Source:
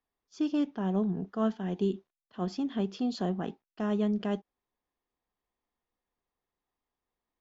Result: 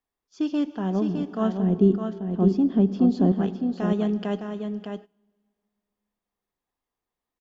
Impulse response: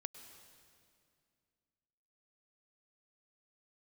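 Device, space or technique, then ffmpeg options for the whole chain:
keyed gated reverb: -filter_complex "[0:a]asettb=1/sr,asplit=3[link_01][link_02][link_03];[link_01]atrim=end=1.584[link_04];[link_02]atrim=start=1.58:end=3.32,asetpts=PTS-STARTPTS,afade=type=in:duration=0.004:curve=qsin,afade=type=out:start_time=1.736:duration=0.004:curve=qsin,tiltshelf=frequency=740:gain=9.5[link_05];[link_03]atrim=start=3.316[link_06];[link_04][link_05]acrossfade=duration=0.004:curve1=hsin:curve2=qsin[link_07];[link_07][link_06]acrossfade=duration=0.004:curve1=qsin:curve2=hsin,aecho=1:1:610:0.473,asplit=3[link_08][link_09][link_10];[1:a]atrim=start_sample=2205[link_11];[link_09][link_11]afir=irnorm=-1:irlink=0[link_12];[link_10]apad=whole_len=353342[link_13];[link_12][link_13]sidechaingate=range=-20dB:threshold=-45dB:ratio=16:detection=peak,volume=1.5dB[link_14];[link_08][link_14]amix=inputs=2:normalize=0,volume=-1dB"

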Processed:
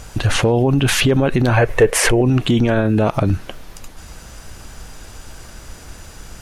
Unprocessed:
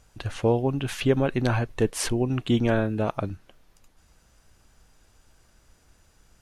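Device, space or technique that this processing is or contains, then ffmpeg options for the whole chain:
loud club master: -filter_complex "[0:a]acompressor=threshold=-26dB:ratio=2.5,asoftclip=type=hard:threshold=-18.5dB,alimiter=level_in=29dB:limit=-1dB:release=50:level=0:latency=1,asettb=1/sr,asplit=3[link_01][link_02][link_03];[link_01]atrim=end=1.574[link_04];[link_02]atrim=start=1.57:end=2.21,asetpts=PTS-STARTPTS,afade=type=in:duration=0.004:curve=qsin,afade=type=out:start_time=0.636:duration=0.004:curve=qsin,equalizer=frequency=250:width_type=o:width=1:gain=-9,equalizer=frequency=500:width_type=o:width=1:gain=11,equalizer=frequency=2000:width_type=o:width=1:gain=9,equalizer=frequency=4000:width_type=o:width=1:gain=-5[link_05];[link_03]atrim=start=2.206[link_06];[link_04][link_05]acrossfade=duration=0.004:curve1=hsin:curve2=qsin[link_07];[link_07][link_06]acrossfade=duration=0.004:curve1=qsin:curve2=hsin,volume=-6.5dB"

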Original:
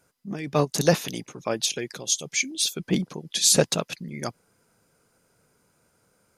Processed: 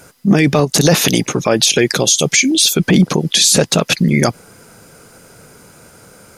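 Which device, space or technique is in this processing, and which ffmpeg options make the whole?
mastering chain: -af "equalizer=frequency=1000:width_type=o:width=0.21:gain=-3,acompressor=threshold=-23dB:ratio=3,asoftclip=type=hard:threshold=-13.5dB,alimiter=level_in=24.5dB:limit=-1dB:release=50:level=0:latency=1,volume=-1dB"

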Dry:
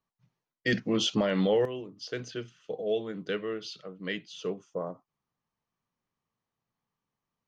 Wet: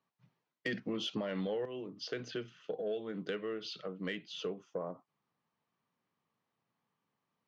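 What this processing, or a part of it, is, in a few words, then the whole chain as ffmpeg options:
AM radio: -af "highpass=140,lowpass=4100,acompressor=threshold=-39dB:ratio=4,asoftclip=type=tanh:threshold=-27.5dB,volume=3.5dB"

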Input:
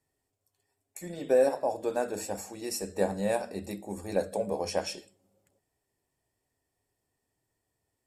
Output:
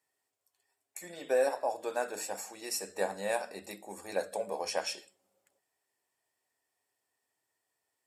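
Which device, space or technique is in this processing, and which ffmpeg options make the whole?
filter by subtraction: -filter_complex "[0:a]asplit=2[link_01][link_02];[link_02]lowpass=1300,volume=-1[link_03];[link_01][link_03]amix=inputs=2:normalize=0"

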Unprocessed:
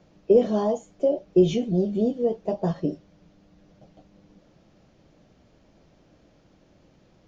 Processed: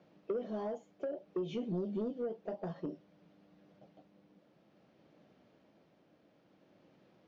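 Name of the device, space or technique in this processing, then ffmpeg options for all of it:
AM radio: -af "highpass=180,lowpass=3800,acompressor=threshold=-25dB:ratio=10,asoftclip=type=tanh:threshold=-22dB,tremolo=f=0.57:d=0.31,volume=-5dB"

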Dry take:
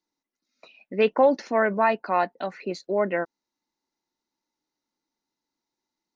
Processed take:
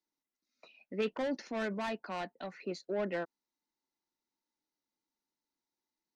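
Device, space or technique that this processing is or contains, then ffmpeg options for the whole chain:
one-band saturation: -filter_complex "[0:a]acrossover=split=350|3200[link_01][link_02][link_03];[link_02]asoftclip=type=tanh:threshold=-24.5dB[link_04];[link_01][link_04][link_03]amix=inputs=3:normalize=0,asettb=1/sr,asplit=3[link_05][link_06][link_07];[link_05]atrim=end=1.014[link_08];[link_06]atrim=start=1.01:end=2.65,asetpts=PTS-STARTPTS,afade=type=in:duration=0.004:curve=qsin,afade=type=out:start_time=1.636:duration=0.004:curve=qsin,equalizer=frequency=680:width_type=o:width=2:gain=-3.5[link_09];[link_07]atrim=start=2.646[link_10];[link_08][link_09]acrossfade=duration=0.004:curve1=hsin:curve2=qsin[link_11];[link_11][link_10]acrossfade=duration=0.004:curve1=qsin:curve2=hsin,volume=-7.5dB"

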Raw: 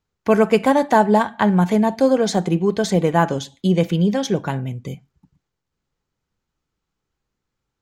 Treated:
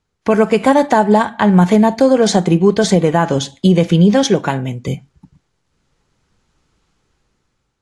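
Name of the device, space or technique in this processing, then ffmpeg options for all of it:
low-bitrate web radio: -filter_complex "[0:a]asettb=1/sr,asplit=3[link_01][link_02][link_03];[link_01]atrim=end=4.234[link_04];[link_02]atrim=start=4.23:end=4.88,asetpts=PTS-STARTPTS,afade=type=in:duration=0.004:curve=qsin,afade=type=out:start_time=0.646:duration=0.004:curve=qsin,highpass=frequency=220:poles=1[link_05];[link_03]atrim=start=4.876[link_06];[link_04][link_05]acrossfade=duration=0.004:curve1=hsin:curve2=qsin[link_07];[link_07][link_06]acrossfade=duration=0.004:curve1=qsin:curve2=hsin,dynaudnorm=framelen=680:gausssize=5:maxgain=14.5dB,alimiter=limit=-8.5dB:level=0:latency=1:release=160,volume=6.5dB" -ar 24000 -c:a aac -b:a 48k

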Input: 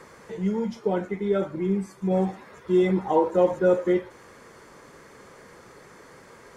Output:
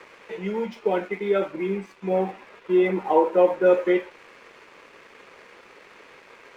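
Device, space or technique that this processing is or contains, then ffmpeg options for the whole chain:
pocket radio on a weak battery: -filter_complex "[0:a]asettb=1/sr,asplit=3[link_01][link_02][link_03];[link_01]atrim=end=2.094[link_04];[link_02]atrim=start=2.09:end=3.66,asetpts=PTS-STARTPTS,afade=type=in:duration=0.004:curve=qsin,afade=type=out:start_time=1.566:duration=0.004:curve=qsin,lowpass=frequency=2100:poles=1[link_05];[link_03]atrim=start=3.656[link_06];[link_04][link_05]acrossfade=duration=0.004:curve1=hsin:curve2=qsin[link_07];[link_07][link_06]acrossfade=duration=0.004:curve1=qsin:curve2=hsin,highpass=320,lowpass=4100,aeval=exprs='sgn(val(0))*max(abs(val(0))-0.00158,0)':channel_layout=same,equalizer=frequency=2500:width_type=o:width=0.51:gain=10,volume=3.5dB"

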